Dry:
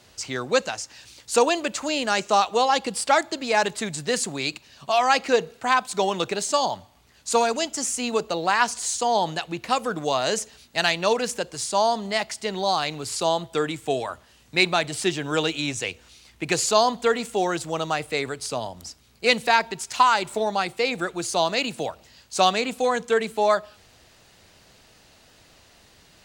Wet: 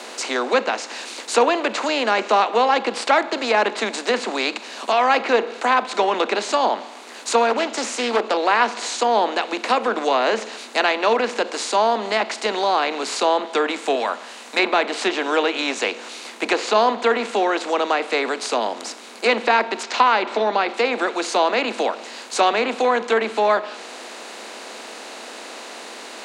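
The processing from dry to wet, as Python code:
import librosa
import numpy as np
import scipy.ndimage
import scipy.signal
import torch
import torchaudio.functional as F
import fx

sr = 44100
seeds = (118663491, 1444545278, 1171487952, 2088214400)

y = fx.doppler_dist(x, sr, depth_ms=0.2, at=(7.5, 8.37))
y = fx.peak_eq(y, sr, hz=350.0, db=-10.0, octaves=0.77, at=(13.95, 14.59))
y = fx.lowpass(y, sr, hz=5300.0, slope=24, at=(19.83, 20.74))
y = fx.bin_compress(y, sr, power=0.6)
y = scipy.signal.sosfilt(scipy.signal.butter(16, 210.0, 'highpass', fs=sr, output='sos'), y)
y = fx.env_lowpass_down(y, sr, base_hz=2800.0, full_db=-15.0)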